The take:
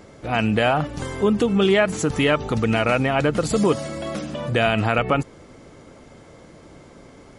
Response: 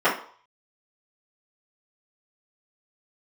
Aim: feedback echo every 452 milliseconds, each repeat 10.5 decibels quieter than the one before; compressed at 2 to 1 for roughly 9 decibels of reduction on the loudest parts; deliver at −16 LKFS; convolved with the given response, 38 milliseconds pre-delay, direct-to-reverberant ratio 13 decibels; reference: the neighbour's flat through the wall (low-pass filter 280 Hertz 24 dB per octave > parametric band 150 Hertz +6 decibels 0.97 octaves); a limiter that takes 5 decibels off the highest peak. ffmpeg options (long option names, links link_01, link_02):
-filter_complex "[0:a]acompressor=threshold=-31dB:ratio=2,alimiter=limit=-19dB:level=0:latency=1,aecho=1:1:452|904|1356:0.299|0.0896|0.0269,asplit=2[link_01][link_02];[1:a]atrim=start_sample=2205,adelay=38[link_03];[link_02][link_03]afir=irnorm=-1:irlink=0,volume=-32.5dB[link_04];[link_01][link_04]amix=inputs=2:normalize=0,lowpass=frequency=280:width=0.5412,lowpass=frequency=280:width=1.3066,equalizer=frequency=150:width_type=o:width=0.97:gain=6,volume=14.5dB"